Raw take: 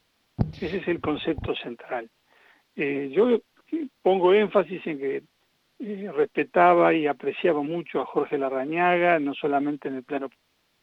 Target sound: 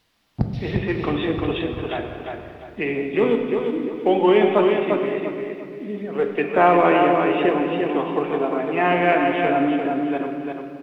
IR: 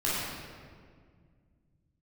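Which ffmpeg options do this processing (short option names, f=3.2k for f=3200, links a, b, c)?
-filter_complex "[0:a]aecho=1:1:349|698|1047|1396:0.596|0.185|0.0572|0.0177,asplit=2[a][b];[1:a]atrim=start_sample=2205[c];[b][c]afir=irnorm=-1:irlink=0,volume=-13.5dB[d];[a][d]amix=inputs=2:normalize=0"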